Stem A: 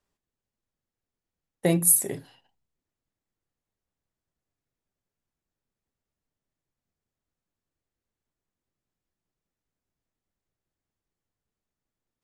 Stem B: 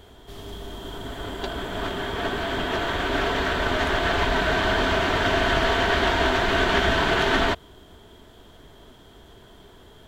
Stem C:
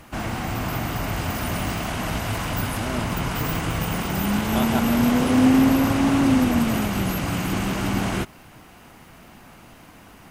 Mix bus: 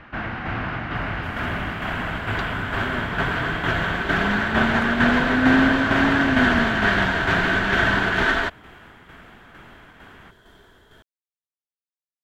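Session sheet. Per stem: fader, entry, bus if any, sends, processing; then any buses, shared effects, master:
off
-2.5 dB, 0.95 s, no send, dry
-0.5 dB, 0.00 s, no send, LPF 3500 Hz 24 dB/oct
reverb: off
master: bell 1600 Hz +10 dB 0.71 oct; tremolo saw down 2.2 Hz, depth 45%; attack slew limiter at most 500 dB/s

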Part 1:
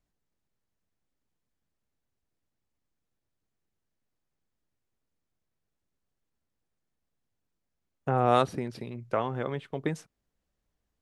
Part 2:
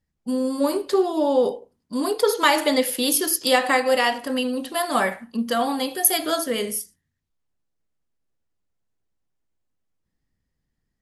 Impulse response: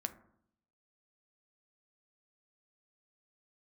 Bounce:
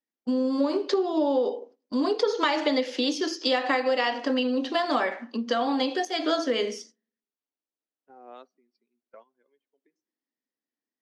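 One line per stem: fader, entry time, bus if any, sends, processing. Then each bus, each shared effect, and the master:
-11.0 dB, 0.00 s, send -12.5 dB, per-bin expansion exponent 2; compressor 2:1, threshold -40 dBFS, peak gain reduction 12 dB; auto duck -13 dB, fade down 1.05 s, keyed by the second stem
+1.5 dB, 0.00 s, send -10.5 dB, low shelf 160 Hz +10 dB; compressor, threshold -24 dBFS, peak gain reduction 12 dB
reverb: on, RT60 0.70 s, pre-delay 5 ms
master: Chebyshev band-pass 260–6100 Hz, order 4; gate -49 dBFS, range -13 dB

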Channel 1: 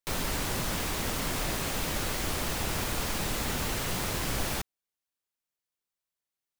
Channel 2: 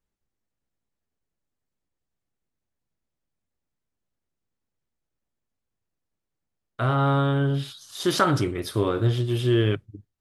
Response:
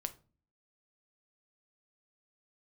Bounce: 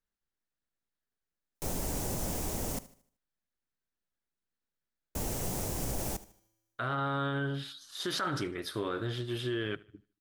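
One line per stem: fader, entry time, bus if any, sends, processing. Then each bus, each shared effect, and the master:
+1.5 dB, 1.55 s, muted 2.79–5.15, no send, echo send -17.5 dB, band shelf 2200 Hz -11 dB 2.4 oct; resonator 110 Hz, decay 1.3 s, harmonics odd, mix 30%
-8.5 dB, 0.00 s, no send, echo send -24 dB, fifteen-band EQ 100 Hz -9 dB, 1600 Hz +8 dB, 4000 Hz +5 dB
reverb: off
echo: feedback echo 76 ms, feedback 38%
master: limiter -23.5 dBFS, peak gain reduction 10.5 dB

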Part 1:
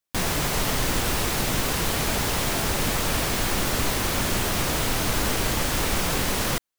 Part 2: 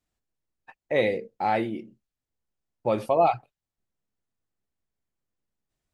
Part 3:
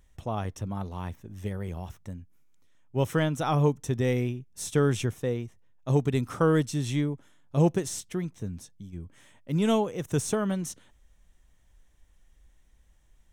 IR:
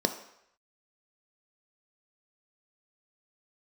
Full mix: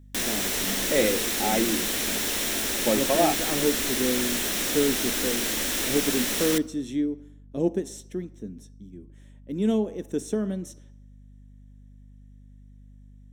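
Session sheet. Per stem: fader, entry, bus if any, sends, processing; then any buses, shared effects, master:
-6.0 dB, 0.00 s, send -18 dB, tilt shelf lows -6.5 dB
0.0 dB, 0.00 s, no send, dry
-9.0 dB, 0.00 s, send -12 dB, dry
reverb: on, RT60 0.75 s, pre-delay 3 ms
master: ten-band EQ 125 Hz -10 dB, 250 Hz +8 dB, 1000 Hz -6 dB; hum 50 Hz, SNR 22 dB

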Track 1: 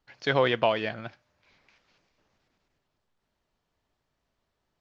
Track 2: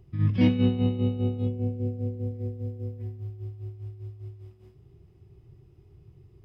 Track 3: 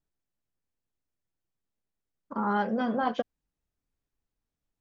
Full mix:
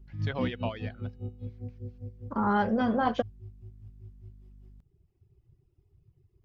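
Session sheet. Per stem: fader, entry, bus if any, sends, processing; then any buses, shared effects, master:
-11.5 dB, 0.00 s, no send, reverb removal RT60 0.57 s; hum 50 Hz, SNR 12 dB
-11.5 dB, 0.00 s, no send, reverb removal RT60 1.8 s
+1.0 dB, 0.00 s, no send, dry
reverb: off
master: low shelf 100 Hz +8.5 dB

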